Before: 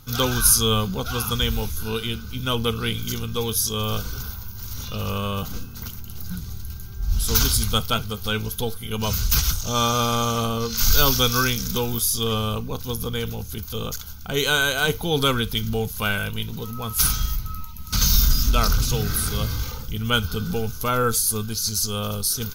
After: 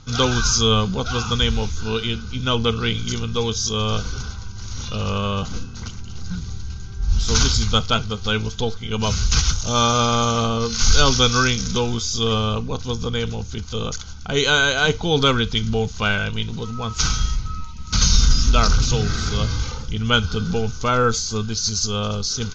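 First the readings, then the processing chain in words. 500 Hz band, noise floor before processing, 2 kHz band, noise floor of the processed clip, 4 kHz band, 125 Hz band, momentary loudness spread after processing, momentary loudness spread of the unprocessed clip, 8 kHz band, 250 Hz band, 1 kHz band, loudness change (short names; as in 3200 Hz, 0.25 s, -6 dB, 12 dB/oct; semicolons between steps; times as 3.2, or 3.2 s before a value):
+3.5 dB, -35 dBFS, +3.5 dB, -33 dBFS, +3.5 dB, +3.5 dB, 14 LU, 14 LU, 0.0 dB, +3.5 dB, +3.5 dB, +2.0 dB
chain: steep low-pass 7000 Hz 96 dB/oct; gain +3.5 dB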